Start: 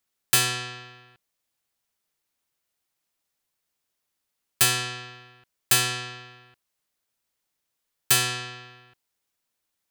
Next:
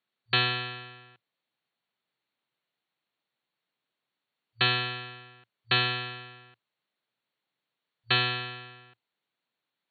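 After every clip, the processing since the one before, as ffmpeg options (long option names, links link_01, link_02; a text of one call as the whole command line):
ffmpeg -i in.wav -af "afftfilt=real='re*between(b*sr/4096,110,4500)':imag='im*between(b*sr/4096,110,4500)':win_size=4096:overlap=0.75" out.wav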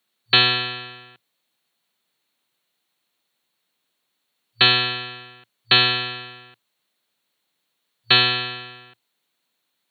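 ffmpeg -i in.wav -af "highpass=190,bass=frequency=250:gain=5,treble=frequency=4000:gain=11,volume=7dB" out.wav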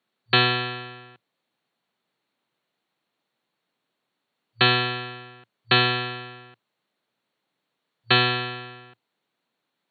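ffmpeg -i in.wav -af "lowpass=frequency=1300:poles=1,volume=3dB" out.wav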